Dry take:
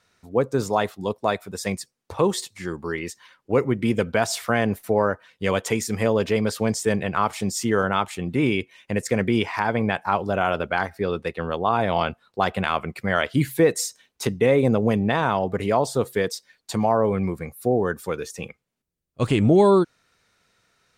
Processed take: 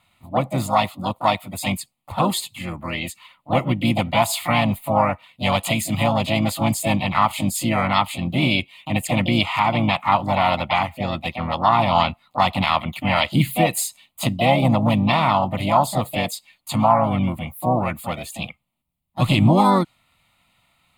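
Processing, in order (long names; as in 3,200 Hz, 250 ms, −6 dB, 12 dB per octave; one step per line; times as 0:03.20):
pitch-shifted copies added +4 semitones −8 dB, +7 semitones −8 dB
dynamic equaliser 5,500 Hz, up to +7 dB, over −47 dBFS, Q 1.2
phaser with its sweep stopped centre 1,600 Hz, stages 6
level +5.5 dB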